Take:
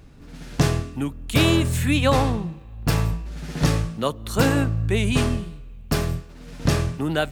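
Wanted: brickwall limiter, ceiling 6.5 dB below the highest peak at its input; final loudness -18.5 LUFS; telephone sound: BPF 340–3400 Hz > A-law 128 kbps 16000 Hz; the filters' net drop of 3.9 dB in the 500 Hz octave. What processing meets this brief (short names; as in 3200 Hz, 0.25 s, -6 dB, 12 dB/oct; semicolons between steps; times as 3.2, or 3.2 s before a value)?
bell 500 Hz -3.5 dB; limiter -13.5 dBFS; BPF 340–3400 Hz; gain +13 dB; A-law 128 kbps 16000 Hz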